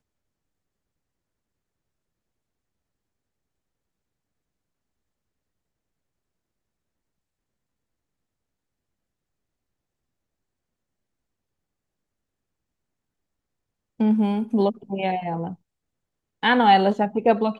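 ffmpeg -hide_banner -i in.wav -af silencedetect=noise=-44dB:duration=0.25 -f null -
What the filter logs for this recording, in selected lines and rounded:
silence_start: 0.00
silence_end: 14.00 | silence_duration: 14.00
silence_start: 15.55
silence_end: 16.43 | silence_duration: 0.88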